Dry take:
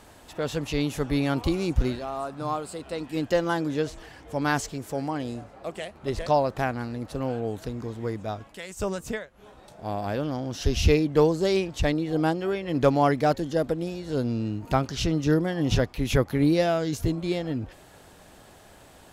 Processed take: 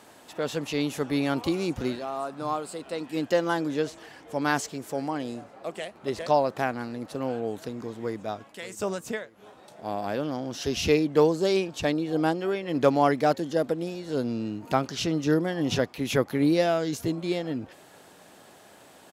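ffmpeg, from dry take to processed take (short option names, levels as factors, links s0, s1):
-filter_complex "[0:a]asplit=2[s0][s1];[s1]afade=t=in:st=8.02:d=0.01,afade=t=out:st=8.62:d=0.01,aecho=0:1:590|1180|1770:0.158489|0.0554713|0.0194149[s2];[s0][s2]amix=inputs=2:normalize=0,asettb=1/sr,asplit=3[s3][s4][s5];[s3]atrim=end=11.364[s6];[s4]atrim=start=11.36:end=12.17,asetpts=PTS-STARTPTS,afade=t=in:d=0.004:c=qsin,afade=t=out:st=0.806:d=0.004:c=qsin,bandreject=f=2000:w=12[s7];[s5]atrim=start=12.166[s8];[s6][s7]acrossfade=d=0.004:c1=hsin:c2=qsin[s9];[s9][s8]acrossfade=d=0.004:c1=qsin:c2=hsin,highpass=180"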